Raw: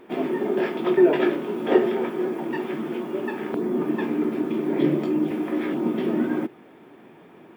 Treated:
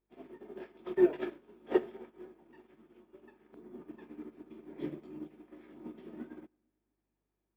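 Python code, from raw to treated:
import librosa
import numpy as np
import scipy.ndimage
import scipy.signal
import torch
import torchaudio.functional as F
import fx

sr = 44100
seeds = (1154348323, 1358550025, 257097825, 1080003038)

y = fx.echo_split(x, sr, split_hz=370.0, low_ms=227, high_ms=107, feedback_pct=52, wet_db=-15.5)
y = fx.add_hum(y, sr, base_hz=50, snr_db=24)
y = fx.upward_expand(y, sr, threshold_db=-34.0, expansion=2.5)
y = y * librosa.db_to_amplitude(-7.0)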